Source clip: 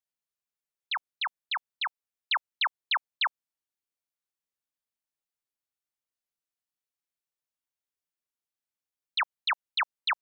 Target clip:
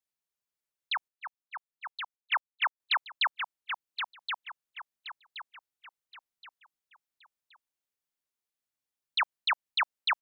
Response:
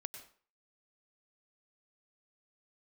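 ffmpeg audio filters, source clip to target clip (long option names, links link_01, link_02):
-filter_complex "[0:a]asettb=1/sr,asplit=3[link_01][link_02][link_03];[link_01]atrim=end=1.084[link_04];[link_02]atrim=start=1.08:end=2.8,asetpts=PTS-STARTPTS,afade=type=in:duration=0.004:curve=qsin,afade=type=out:start_time=1.716:duration=0.004:curve=qsin,agate=range=-37dB:threshold=-28dB:ratio=16:detection=peak[link_05];[link_03]atrim=start=2.796[link_06];[link_04][link_05]acrossfade=duration=0.004:curve1=hsin:curve2=qsin[link_07];[link_07][link_06]acrossfade=duration=0.004:curve1=qsin:curve2=hsin,asplit=2[link_08][link_09];[link_09]aecho=0:1:1073|2146|3219|4292:0.447|0.161|0.0579|0.0208[link_10];[link_08][link_10]amix=inputs=2:normalize=0"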